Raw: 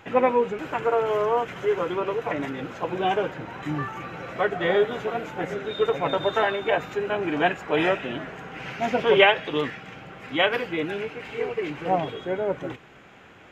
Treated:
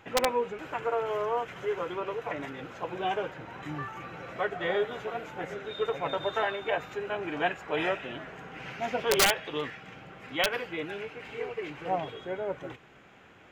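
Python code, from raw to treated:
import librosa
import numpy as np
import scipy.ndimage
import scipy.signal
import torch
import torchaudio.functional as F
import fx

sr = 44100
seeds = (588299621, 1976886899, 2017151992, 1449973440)

y = (np.mod(10.0 ** (8.5 / 20.0) * x + 1.0, 2.0) - 1.0) / 10.0 ** (8.5 / 20.0)
y = fx.dynamic_eq(y, sr, hz=230.0, q=0.87, threshold_db=-39.0, ratio=4.0, max_db=-5)
y = y * librosa.db_to_amplitude(-5.5)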